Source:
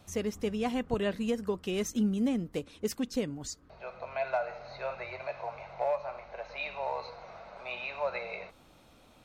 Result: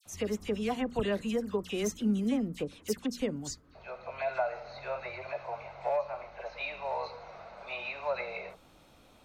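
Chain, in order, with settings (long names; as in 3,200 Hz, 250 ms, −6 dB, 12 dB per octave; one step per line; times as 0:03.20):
mains-hum notches 60/120/180/240 Hz
all-pass dispersion lows, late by 58 ms, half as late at 2,100 Hz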